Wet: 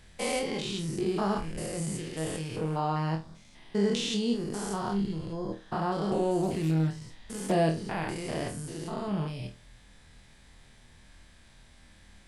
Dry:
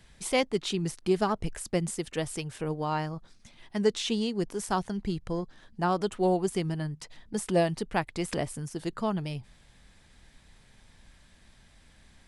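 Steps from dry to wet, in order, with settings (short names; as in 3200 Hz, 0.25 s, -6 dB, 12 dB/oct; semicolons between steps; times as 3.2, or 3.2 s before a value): stepped spectrum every 0.2 s; flutter echo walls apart 4.3 m, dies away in 0.27 s; 6.42–7.52 Doppler distortion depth 0.3 ms; gain +2 dB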